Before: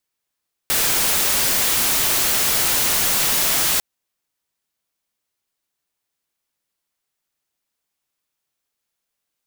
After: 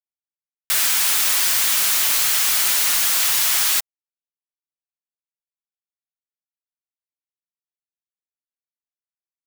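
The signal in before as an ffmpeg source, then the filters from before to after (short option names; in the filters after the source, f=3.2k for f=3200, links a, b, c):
-f lavfi -i "anoisesrc=c=white:a=0.206:d=3.1:r=44100:seed=1"
-af "highpass=1.1k,aecho=1:1:7.2:0.31,acrusher=bits=3:mix=0:aa=0.5"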